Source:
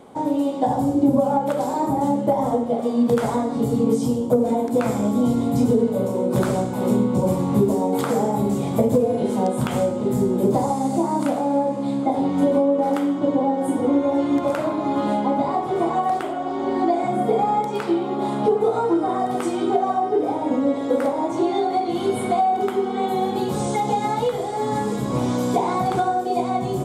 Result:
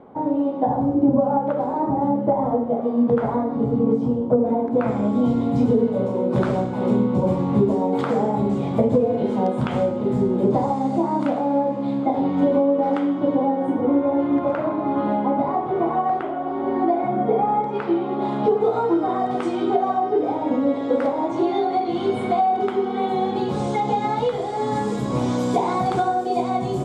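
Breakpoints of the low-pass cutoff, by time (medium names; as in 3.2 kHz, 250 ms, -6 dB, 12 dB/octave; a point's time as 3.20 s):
4.67 s 1.5 kHz
5.18 s 3.3 kHz
13.37 s 3.3 kHz
13.80 s 2 kHz
17.64 s 2 kHz
18.51 s 4.2 kHz
24.05 s 4.2 kHz
24.90 s 7.4 kHz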